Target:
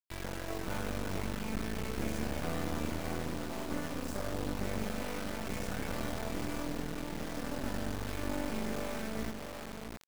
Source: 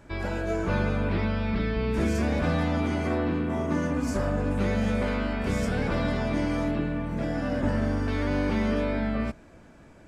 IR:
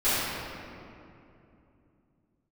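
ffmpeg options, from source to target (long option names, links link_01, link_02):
-filter_complex "[0:a]asplit=2[link_01][link_02];[link_02]adelay=661,lowpass=frequency=1500:poles=1,volume=-7dB,asplit=2[link_03][link_04];[link_04]adelay=661,lowpass=frequency=1500:poles=1,volume=0.24,asplit=2[link_05][link_06];[link_06]adelay=661,lowpass=frequency=1500:poles=1,volume=0.24[link_07];[link_01][link_03][link_05][link_07]amix=inputs=4:normalize=0,acrusher=bits=3:dc=4:mix=0:aa=0.000001,volume=-7dB"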